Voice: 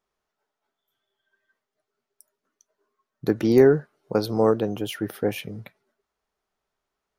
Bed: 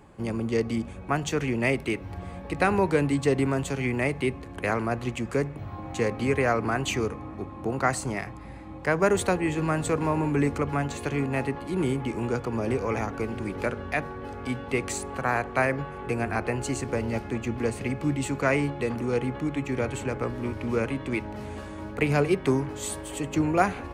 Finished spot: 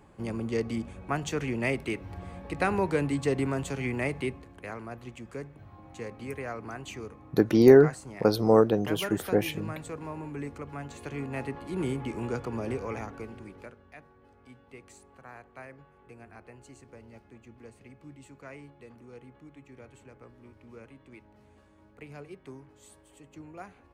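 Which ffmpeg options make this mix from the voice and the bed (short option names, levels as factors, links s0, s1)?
-filter_complex "[0:a]adelay=4100,volume=1[s0];[1:a]volume=1.68,afade=t=out:st=4.18:d=0.4:silence=0.354813,afade=t=in:st=10.7:d=1.15:silence=0.375837,afade=t=out:st=12.5:d=1.28:silence=0.133352[s1];[s0][s1]amix=inputs=2:normalize=0"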